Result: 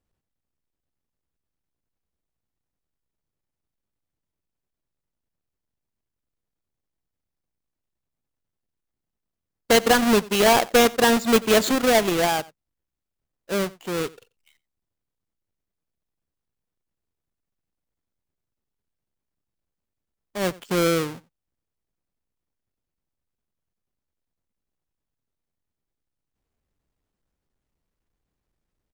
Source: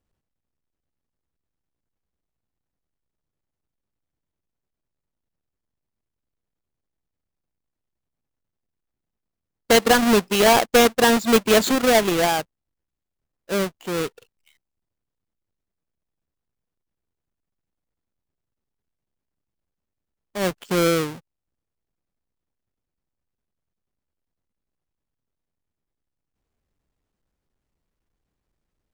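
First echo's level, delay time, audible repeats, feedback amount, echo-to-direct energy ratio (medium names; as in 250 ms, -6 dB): -22.0 dB, 90 ms, 1, no regular repeats, -22.0 dB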